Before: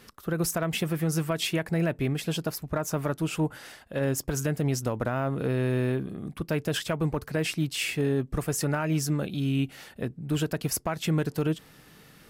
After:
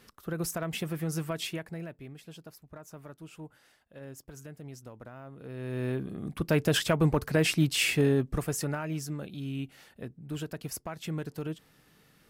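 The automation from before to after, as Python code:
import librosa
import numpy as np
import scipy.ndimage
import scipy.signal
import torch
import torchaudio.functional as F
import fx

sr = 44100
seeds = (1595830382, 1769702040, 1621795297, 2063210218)

y = fx.gain(x, sr, db=fx.line((1.4, -5.5), (2.03, -18.0), (5.39, -18.0), (5.85, -5.0), (6.57, 3.0), (7.96, 3.0), (9.06, -9.0)))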